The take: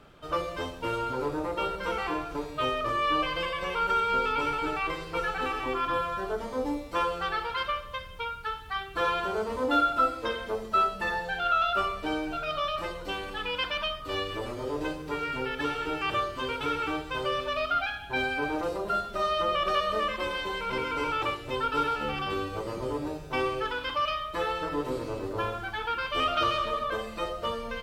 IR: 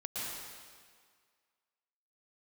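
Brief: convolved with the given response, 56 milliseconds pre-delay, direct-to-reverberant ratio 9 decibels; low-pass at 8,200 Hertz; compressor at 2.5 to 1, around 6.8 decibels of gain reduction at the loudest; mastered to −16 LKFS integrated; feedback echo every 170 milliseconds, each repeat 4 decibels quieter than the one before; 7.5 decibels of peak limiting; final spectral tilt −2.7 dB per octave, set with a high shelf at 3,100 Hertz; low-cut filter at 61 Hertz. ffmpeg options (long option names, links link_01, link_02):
-filter_complex "[0:a]highpass=61,lowpass=8200,highshelf=frequency=3100:gain=-8,acompressor=threshold=-31dB:ratio=2.5,alimiter=level_in=4.5dB:limit=-24dB:level=0:latency=1,volume=-4.5dB,aecho=1:1:170|340|510|680|850|1020|1190|1360|1530:0.631|0.398|0.25|0.158|0.0994|0.0626|0.0394|0.0249|0.0157,asplit=2[link_01][link_02];[1:a]atrim=start_sample=2205,adelay=56[link_03];[link_02][link_03]afir=irnorm=-1:irlink=0,volume=-12dB[link_04];[link_01][link_04]amix=inputs=2:normalize=0,volume=18.5dB"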